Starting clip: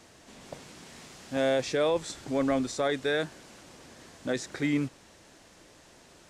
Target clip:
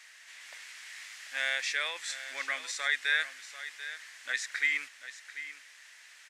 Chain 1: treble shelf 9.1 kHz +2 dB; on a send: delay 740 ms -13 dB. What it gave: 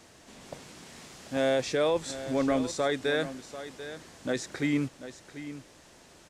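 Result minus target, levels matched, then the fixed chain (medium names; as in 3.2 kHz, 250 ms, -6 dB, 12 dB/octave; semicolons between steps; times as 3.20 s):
2 kHz band -10.0 dB
resonant high-pass 1.9 kHz, resonance Q 3.3; treble shelf 9.1 kHz +2 dB; on a send: delay 740 ms -13 dB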